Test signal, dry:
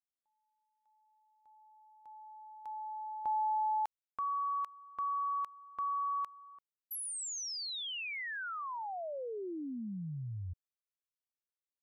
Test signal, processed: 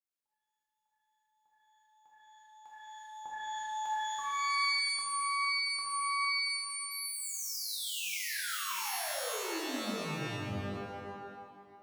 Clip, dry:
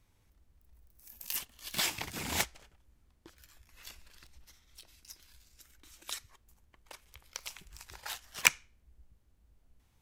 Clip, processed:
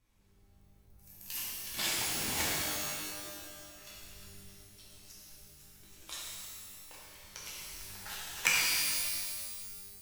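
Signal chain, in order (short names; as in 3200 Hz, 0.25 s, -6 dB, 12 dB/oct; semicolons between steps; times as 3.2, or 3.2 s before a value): shimmer reverb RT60 1.9 s, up +12 st, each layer -2 dB, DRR -6.5 dB; gain -7.5 dB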